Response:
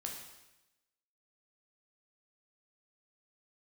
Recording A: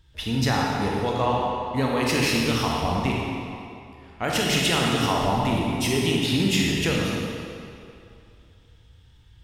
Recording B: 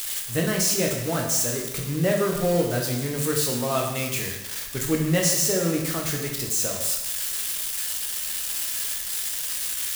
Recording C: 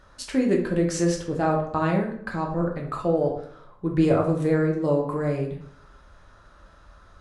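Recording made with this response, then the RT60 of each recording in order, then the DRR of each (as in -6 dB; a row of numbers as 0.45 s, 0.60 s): B; 2.6 s, 0.95 s, 0.60 s; -3.0 dB, 0.0 dB, -0.5 dB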